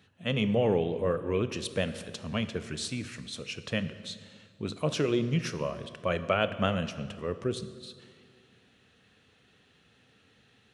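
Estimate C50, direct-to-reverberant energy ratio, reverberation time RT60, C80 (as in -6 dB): 12.5 dB, 11.0 dB, 2.0 s, 13.5 dB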